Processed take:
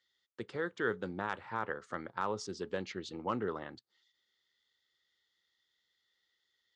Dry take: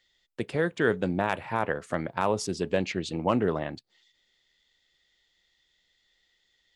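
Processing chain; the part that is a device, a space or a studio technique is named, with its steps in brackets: car door speaker (cabinet simulation 110–6800 Hz, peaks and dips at 160 Hz -9 dB, 270 Hz -5 dB, 650 Hz -9 dB, 1.3 kHz +6 dB, 2.5 kHz -8 dB); trim -8 dB

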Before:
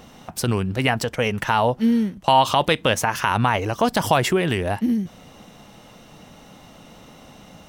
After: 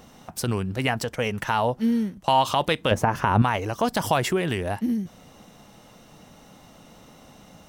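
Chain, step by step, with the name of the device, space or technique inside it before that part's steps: exciter from parts (in parallel at -8.5 dB: high-pass 2.1 kHz + saturation -31.5 dBFS, distortion -4 dB + high-pass 2.8 kHz 12 dB/octave); 2.91–3.42 s: on the sum: tilt shelf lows +9 dB, about 1.4 kHz; trim -4 dB

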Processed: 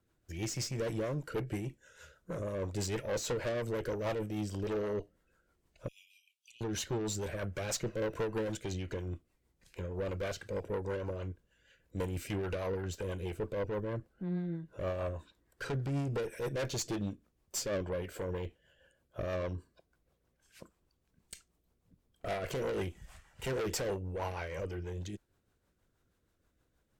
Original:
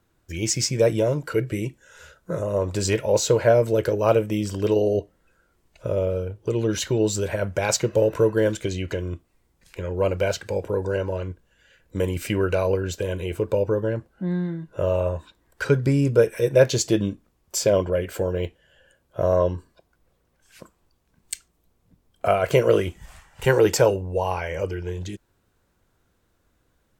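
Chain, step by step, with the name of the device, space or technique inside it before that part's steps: 5.88–6.61 s: steep high-pass 2.4 kHz 72 dB/octave; overdriven rotary cabinet (valve stage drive 24 dB, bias 0.35; rotary cabinet horn 6.3 Hz); trim -5.5 dB

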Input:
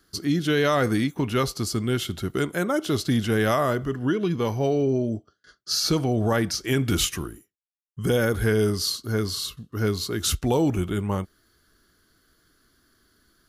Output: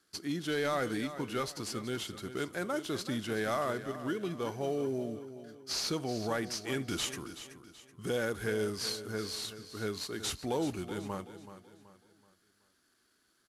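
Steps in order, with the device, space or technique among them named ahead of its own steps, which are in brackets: early wireless headset (high-pass 280 Hz 6 dB/octave; CVSD coder 64 kbps); feedback delay 378 ms, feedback 38%, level -12.5 dB; trim -8.5 dB

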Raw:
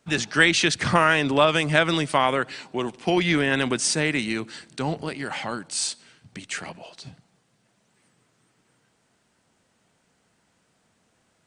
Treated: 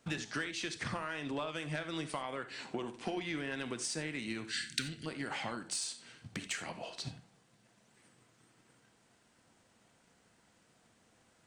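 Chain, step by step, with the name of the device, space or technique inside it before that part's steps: drum-bus smash (transient shaper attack +5 dB, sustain 0 dB; compression 8:1, threshold -33 dBFS, peak gain reduction 23.5 dB; saturation -23.5 dBFS, distortion -21 dB); 4.44–5.06 s: FFT filter 240 Hz 0 dB, 920 Hz -29 dB, 1.5 kHz +7 dB; gated-style reverb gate 110 ms flat, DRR 8.5 dB; trim -2 dB

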